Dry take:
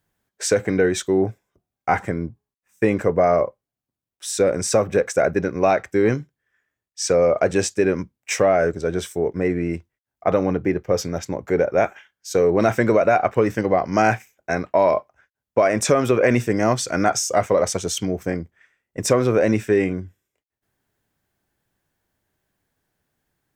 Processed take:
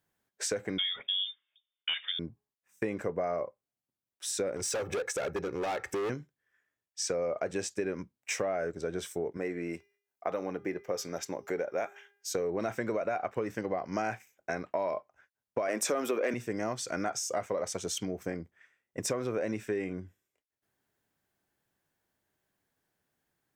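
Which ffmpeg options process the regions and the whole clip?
-filter_complex "[0:a]asettb=1/sr,asplit=3[s0][s1][s2];[s0]atrim=end=0.784[s3];[s1]atrim=start=0.78:end=2.19,asetpts=PTS-STARTPTS,afade=t=in:d=0.004:c=qsin,afade=t=out:st=1.406:d=0.004:c=qsin,aeval=exprs='0.335*(abs(mod(val(0)/0.335+3,4)-2)-1)':c=same,lowpass=f=3100:t=q:w=0.5098,lowpass=f=3100:t=q:w=0.6013,lowpass=f=3100:t=q:w=0.9,lowpass=f=3100:t=q:w=2.563,afreqshift=-3700[s4];[s2]atrim=start=2.186[s5];[s3][s4]acrossfade=d=0.004:c1=hsin:c2=qsin[s6];[s6][s5]acrossfade=d=0.004:c1=qsin:c2=hsin,asettb=1/sr,asplit=3[s7][s8][s9];[s7]atrim=end=4.564[s10];[s8]atrim=start=4.56:end=6.1,asetpts=PTS-STARTPTS,afade=t=in:d=0.004:c=qsin,afade=t=out:st=1.536:d=0.004:c=qsin,aecho=1:1:2.3:0.52,atrim=end_sample=67914,acompressor=mode=upward:threshold=0.112:ratio=2.5:attack=3.2:release=140:knee=2.83:detection=peak,asoftclip=type=hard:threshold=0.112[s11];[s9]atrim=start=6.096[s12];[s10][s11]acrossfade=d=0.004:c1=hsin:c2=qsin[s13];[s13][s12]acrossfade=d=0.004:c1=qsin:c2=hsin,asettb=1/sr,asplit=3[s14][s15][s16];[s14]atrim=end=9.374[s17];[s15]atrim=start=9.37:end=12.31,asetpts=PTS-STARTPTS,afade=t=in:d=0.004:c=qsin,afade=t=out:st=2.936:d=0.004:c=qsin,highpass=f=310:p=1,highshelf=f=6900:g=6,bandreject=f=403.6:t=h:w=4,bandreject=f=807.2:t=h:w=4,bandreject=f=1210.8:t=h:w=4,bandreject=f=1614.4:t=h:w=4,bandreject=f=2018:t=h:w=4,bandreject=f=2421.6:t=h:w=4,bandreject=f=2825.2:t=h:w=4,bandreject=f=3228.8:t=h:w=4,bandreject=f=3632.4:t=h:w=4,bandreject=f=4036:t=h:w=4,bandreject=f=4439.6:t=h:w=4,bandreject=f=4843.2:t=h:w=4,bandreject=f=5246.8:t=h:w=4,bandreject=f=5650.4:t=h:w=4,bandreject=f=6054:t=h:w=4[s18];[s16]atrim=start=12.306[s19];[s17][s18]acrossfade=d=0.004:c1=hsin:c2=qsin[s20];[s20][s19]acrossfade=d=0.004:c1=qsin:c2=hsin,asettb=1/sr,asplit=3[s21][s22][s23];[s21]atrim=end=15.684[s24];[s22]atrim=start=15.68:end=16.34,asetpts=PTS-STARTPTS,afade=t=in:d=0.004:c=qsin,afade=t=out:st=0.656:d=0.004:c=qsin,highpass=f=220:w=0.5412,highpass=f=220:w=1.3066,equalizer=f=13000:w=1.1:g=8.5,acontrast=64[s25];[s23]atrim=start=16.336[s26];[s24][s25]acrossfade=d=0.004:c1=hsin:c2=qsin[s27];[s27][s26]acrossfade=d=0.004:c1=qsin:c2=hsin,lowshelf=f=100:g=-10.5,acompressor=threshold=0.0447:ratio=3,volume=0.562"

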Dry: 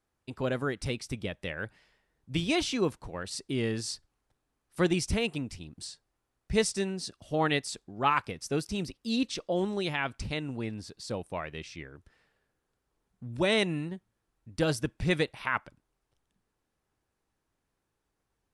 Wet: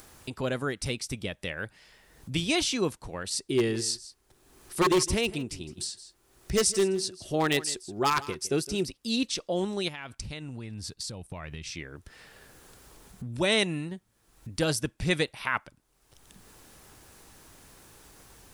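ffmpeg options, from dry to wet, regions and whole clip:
-filter_complex "[0:a]asettb=1/sr,asplit=3[s0][s1][s2];[s0]atrim=end=3.464[s3];[s1]atrim=start=3.46:end=8.84,asetpts=PTS-STARTPTS,afade=t=in:d=0.004:c=qsin,afade=t=out:st=5.376:d=0.004:c=qsin,equalizer=f=370:t=o:w=0.21:g=13.5,aeval=exprs='0.141*(abs(mod(val(0)/0.141+3,4)-2)-1)':c=same,aecho=1:1:161:0.133,atrim=end_sample=237258[s4];[s2]atrim=start=8.836[s5];[s3][s4]acrossfade=d=0.004:c1=hsin:c2=qsin[s6];[s6][s5]acrossfade=d=0.004:c1=qsin:c2=hsin,asettb=1/sr,asplit=3[s7][s8][s9];[s7]atrim=end=9.884[s10];[s8]atrim=start=9.88:end=11.71,asetpts=PTS-STARTPTS,afade=t=in:d=0.004:c=qsin,afade=t=out:st=1.826:d=0.004:c=qsin,agate=range=0.316:threshold=0.00316:ratio=16:release=100:detection=peak,asubboost=boost=6:cutoff=190,acompressor=threshold=0.0112:ratio=4:attack=3.2:release=140:knee=1:detection=peak[s11];[s9]atrim=start=11.706[s12];[s10][s11]acrossfade=d=0.004:c1=hsin:c2=qsin[s13];[s13][s12]acrossfade=d=0.004:c1=qsin:c2=hsin,highshelf=f=4000:g=9.5,acompressor=mode=upward:threshold=0.0251:ratio=2.5"

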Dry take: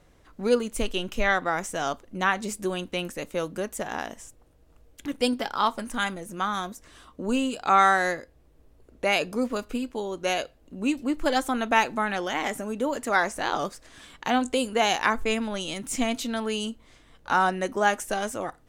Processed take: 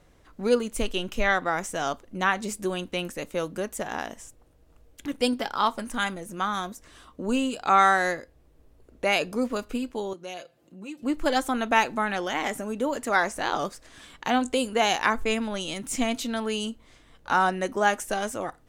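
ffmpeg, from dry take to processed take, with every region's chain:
-filter_complex "[0:a]asettb=1/sr,asplit=3[s0][s1][s2];[s0]atrim=end=10.134[s3];[s1]atrim=start=10.13:end=11.03,asetpts=PTS-STARTPTS,afade=t=in:d=0.004:c=qsin,afade=t=out:st=0.896:d=0.004:c=qsin,highpass=f=99:w=0.5412,highpass=f=99:w=1.3066,aecho=1:1:5.8:0.65,atrim=end_sample=39690,acompressor=threshold=0.00112:ratio=1.5:attack=3.2:release=140:knee=1:detection=peak[s4];[s2]atrim=start=11.026[s5];[s3][s4]acrossfade=d=0.004:c1=hsin:c2=qsin[s6];[s6][s5]acrossfade=d=0.004:c1=qsin:c2=hsin"

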